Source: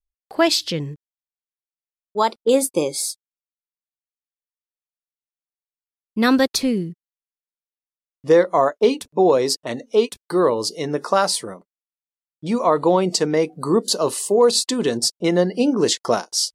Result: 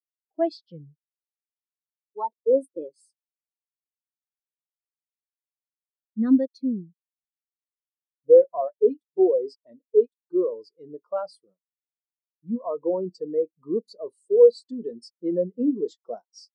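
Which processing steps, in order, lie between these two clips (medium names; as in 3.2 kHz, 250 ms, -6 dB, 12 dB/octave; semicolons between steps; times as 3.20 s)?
waveshaping leveller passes 1; spectral contrast expander 2.5:1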